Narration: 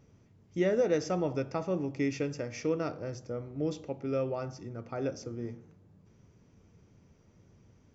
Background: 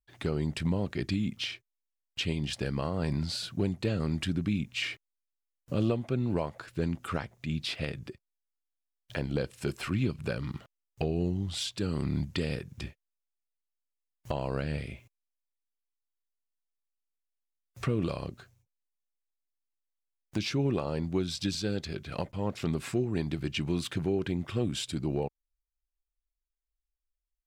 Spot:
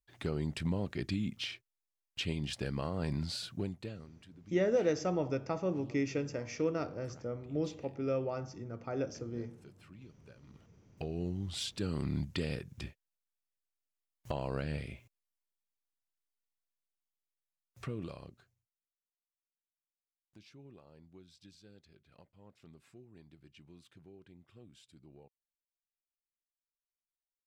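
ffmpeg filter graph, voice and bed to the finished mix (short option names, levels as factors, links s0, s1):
-filter_complex "[0:a]adelay=3950,volume=0.794[s0];[1:a]volume=6.68,afade=t=out:st=3.39:d=0.7:silence=0.0944061,afade=t=in:st=10.41:d=1.23:silence=0.0891251,afade=t=out:st=16.37:d=2.69:silence=0.0749894[s1];[s0][s1]amix=inputs=2:normalize=0"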